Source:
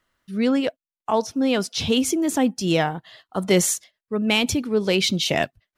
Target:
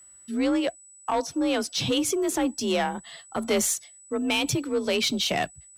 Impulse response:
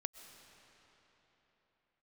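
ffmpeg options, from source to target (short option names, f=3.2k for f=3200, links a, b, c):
-filter_complex "[0:a]asplit=2[a][b];[b]acompressor=threshold=-31dB:ratio=6,volume=0dB[c];[a][c]amix=inputs=2:normalize=0,afreqshift=38,aeval=exprs='val(0)+0.00562*sin(2*PI*7900*n/s)':c=same,asubboost=boost=5:cutoff=95,asoftclip=type=tanh:threshold=-13dB,volume=-3.5dB"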